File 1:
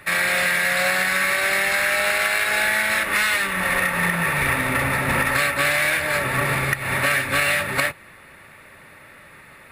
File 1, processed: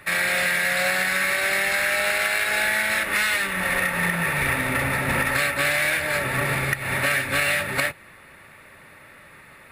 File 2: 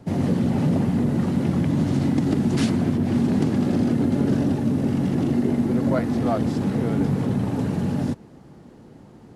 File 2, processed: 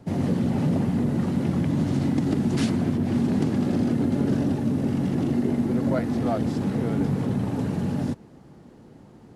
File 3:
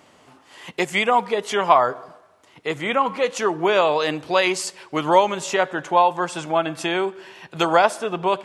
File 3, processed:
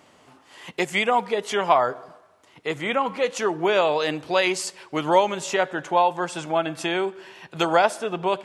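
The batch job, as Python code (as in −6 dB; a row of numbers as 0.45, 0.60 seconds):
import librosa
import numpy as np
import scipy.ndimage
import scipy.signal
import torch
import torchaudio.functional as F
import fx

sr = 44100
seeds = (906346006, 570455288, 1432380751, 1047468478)

y = fx.dynamic_eq(x, sr, hz=1100.0, q=4.1, threshold_db=-37.0, ratio=4.0, max_db=-4)
y = y * 10.0 ** (-24 / 20.0) / np.sqrt(np.mean(np.square(y)))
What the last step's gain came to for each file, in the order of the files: −1.5, −2.5, −2.0 decibels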